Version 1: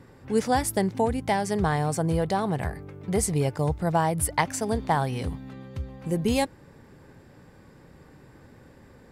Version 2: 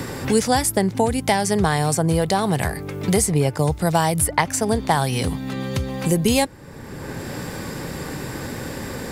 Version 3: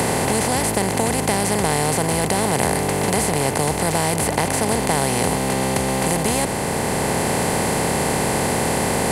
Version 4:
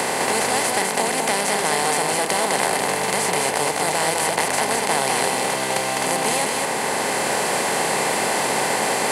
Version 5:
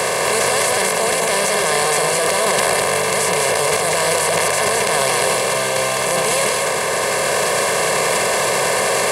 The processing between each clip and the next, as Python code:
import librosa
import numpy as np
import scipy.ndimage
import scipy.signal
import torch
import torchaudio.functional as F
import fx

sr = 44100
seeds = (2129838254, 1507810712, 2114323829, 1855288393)

y1 = fx.high_shelf(x, sr, hz=3600.0, db=9.0)
y1 = fx.band_squash(y1, sr, depth_pct=70)
y1 = y1 * librosa.db_to_amplitude(5.0)
y2 = fx.bin_compress(y1, sr, power=0.2)
y2 = y2 * librosa.db_to_amplitude(-9.0)
y3 = fx.weighting(y2, sr, curve='A')
y3 = y3 + 10.0 ** (-3.0 / 20.0) * np.pad(y3, (int(205 * sr / 1000.0), 0))[:len(y3)]
y4 = y3 + 0.87 * np.pad(y3, (int(1.8 * sr / 1000.0), 0))[:len(y3)]
y4 = fx.transient(y4, sr, attack_db=-5, sustain_db=10)
y4 = y4 * librosa.db_to_amplitude(1.5)